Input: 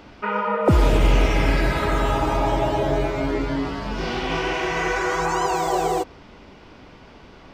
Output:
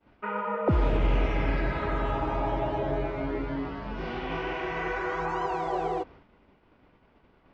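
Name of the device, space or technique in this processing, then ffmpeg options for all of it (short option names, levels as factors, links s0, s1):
hearing-loss simulation: -af "lowpass=2600,agate=range=0.0224:threshold=0.0126:ratio=3:detection=peak,volume=0.422"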